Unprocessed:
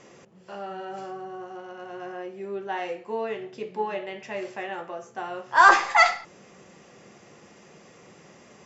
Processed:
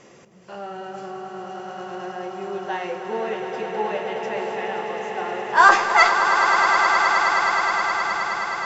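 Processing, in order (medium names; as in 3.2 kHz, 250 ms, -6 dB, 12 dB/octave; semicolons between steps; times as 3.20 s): 1.47–2.77 s: treble shelf 4.1 kHz +9 dB; echo with a slow build-up 105 ms, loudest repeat 8, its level -9 dB; trim +2 dB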